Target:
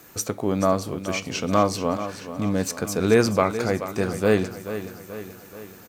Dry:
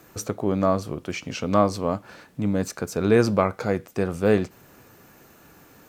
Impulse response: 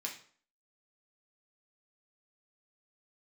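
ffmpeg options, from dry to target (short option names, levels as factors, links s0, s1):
-filter_complex "[0:a]highshelf=f=3100:g=8.5,aecho=1:1:431|862|1293|1724|2155|2586:0.266|0.146|0.0805|0.0443|0.0243|0.0134,asplit=2[s0][s1];[1:a]atrim=start_sample=2205,lowpass=3700[s2];[s1][s2]afir=irnorm=-1:irlink=0,volume=0.224[s3];[s0][s3]amix=inputs=2:normalize=0,volume=0.891"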